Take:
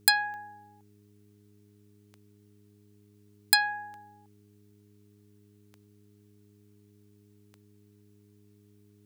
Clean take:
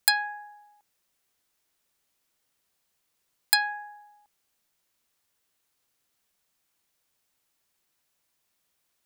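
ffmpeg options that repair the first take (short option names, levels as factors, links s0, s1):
-af "adeclick=t=4,bandreject=f=102.9:t=h:w=4,bandreject=f=205.8:t=h:w=4,bandreject=f=308.7:t=h:w=4,bandreject=f=411.6:t=h:w=4"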